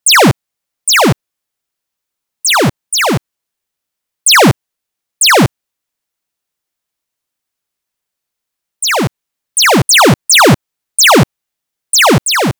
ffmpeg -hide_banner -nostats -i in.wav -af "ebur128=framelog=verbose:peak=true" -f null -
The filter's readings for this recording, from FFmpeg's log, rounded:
Integrated loudness:
  I:          -9.2 LUFS
  Threshold: -19.4 LUFS
Loudness range:
  LRA:        11.1 LU
  Threshold: -32.3 LUFS
  LRA low:   -20.1 LUFS
  LRA high:   -9.1 LUFS
True peak:
  Peak:       -2.8 dBFS